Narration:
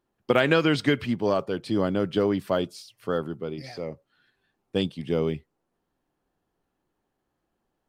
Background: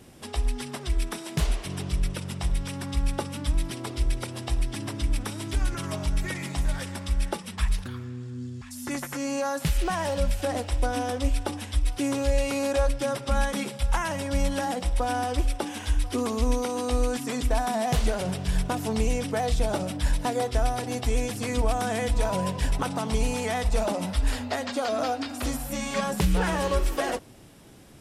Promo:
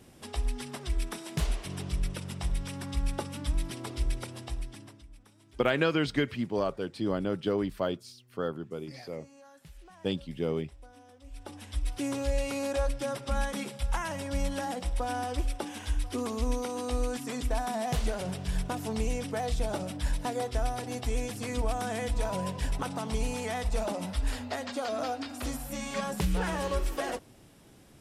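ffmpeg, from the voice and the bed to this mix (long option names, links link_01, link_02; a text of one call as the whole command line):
ffmpeg -i stem1.wav -i stem2.wav -filter_complex "[0:a]adelay=5300,volume=-5.5dB[link_01];[1:a]volume=16.5dB,afade=type=out:start_time=4.1:duration=0.95:silence=0.0794328,afade=type=in:start_time=11.26:duration=0.67:silence=0.0891251[link_02];[link_01][link_02]amix=inputs=2:normalize=0" out.wav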